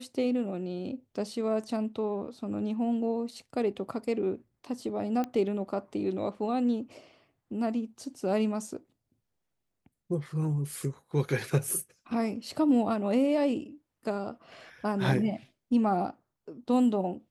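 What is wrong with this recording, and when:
5.24 s: pop -20 dBFS

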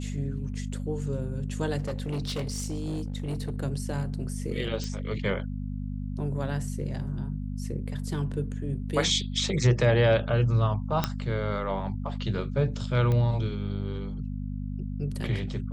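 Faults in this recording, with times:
hum 50 Hz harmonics 5 -33 dBFS
1.82–3.58 s: clipped -27 dBFS
4.84 s: pop -21 dBFS
11.04 s: pop -9 dBFS
13.12 s: pop -18 dBFS

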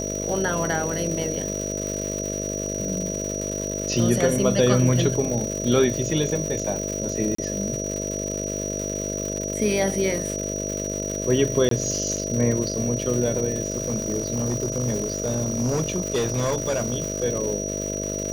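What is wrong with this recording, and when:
buzz 50 Hz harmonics 13 -30 dBFS
crackle 330 per s -28 dBFS
whine 5.8 kHz -30 dBFS
7.35–7.38 s: dropout 34 ms
11.69–11.71 s: dropout 23 ms
13.70–17.24 s: clipped -19 dBFS

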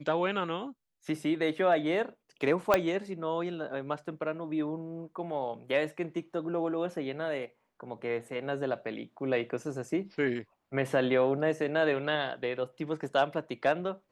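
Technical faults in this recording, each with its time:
2.74 s: pop -9 dBFS

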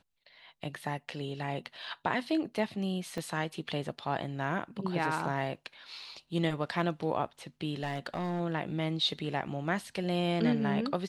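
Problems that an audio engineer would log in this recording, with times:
3.18 s: dropout 2.8 ms
7.83–8.41 s: clipped -28.5 dBFS

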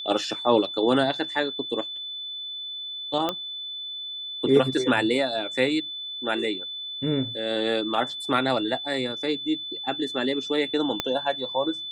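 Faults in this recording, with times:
whine 3.5 kHz -32 dBFS
3.29 s: pop -12 dBFS
11.00 s: pop -9 dBFS

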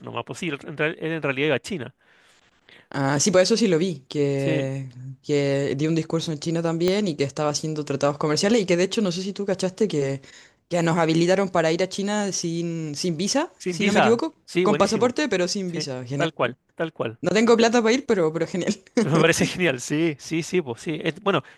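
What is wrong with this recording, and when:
6.88 s: pop -9 dBFS

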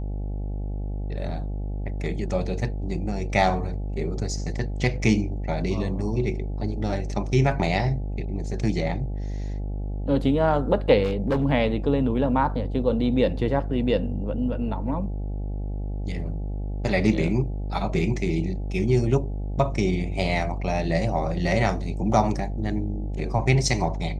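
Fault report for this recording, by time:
buzz 50 Hz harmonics 17 -29 dBFS
11.04–11.45 s: clipped -18.5 dBFS

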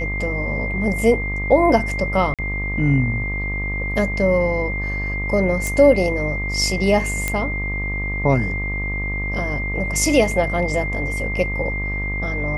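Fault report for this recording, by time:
buzz 50 Hz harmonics 25 -26 dBFS
whine 2.1 kHz -25 dBFS
2.34–2.39 s: dropout 47 ms
5.67 s: pop
7.28 s: pop -6 dBFS

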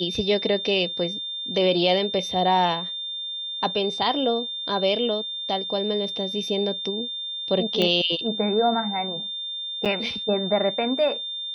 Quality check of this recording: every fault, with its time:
whine 3.6 kHz -29 dBFS
7.82 s: pop -10 dBFS
9.85–9.86 s: dropout 7.1 ms

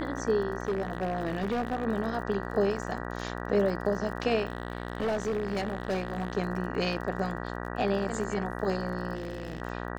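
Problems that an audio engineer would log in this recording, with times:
buzz 60 Hz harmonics 32 -36 dBFS
crackle 35 per s -38 dBFS
0.65–1.85 s: clipped -25 dBFS
4.47–6.37 s: clipped -25.5 dBFS
9.15–9.62 s: clipped -31 dBFS

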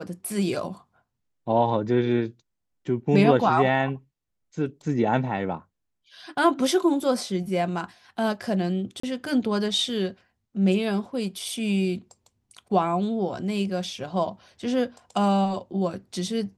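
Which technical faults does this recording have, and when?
9.00–9.03 s: dropout 34 ms

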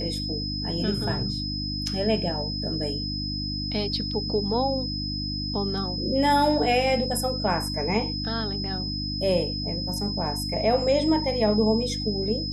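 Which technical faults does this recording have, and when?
hum 50 Hz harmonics 6 -32 dBFS
whine 5.1 kHz -31 dBFS

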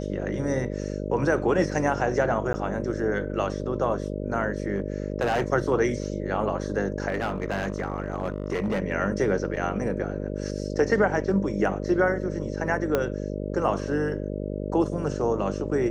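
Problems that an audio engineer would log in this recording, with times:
buzz 50 Hz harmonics 12 -31 dBFS
2.53–2.54 s: dropout 10 ms
4.76–5.44 s: clipped -20 dBFS
7.08–8.82 s: clipped -22.5 dBFS
9.56–9.57 s: dropout 6.5 ms
12.95 s: pop -10 dBFS

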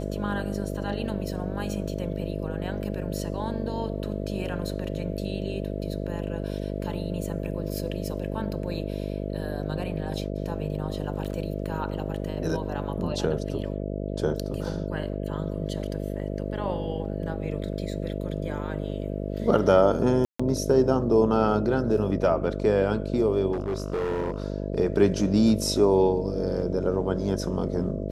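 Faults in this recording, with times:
buzz 50 Hz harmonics 13 -31 dBFS
20.25–20.39 s: dropout 145 ms
21.97–21.98 s: dropout 5 ms
23.52–24.44 s: clipped -24 dBFS

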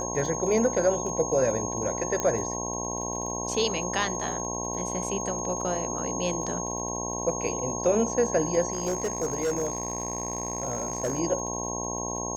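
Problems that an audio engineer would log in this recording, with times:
buzz 60 Hz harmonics 18 -34 dBFS
crackle 26 per s -36 dBFS
whine 6.5 kHz -33 dBFS
2.20 s: pop -13 dBFS
8.72–11.20 s: clipped -23 dBFS

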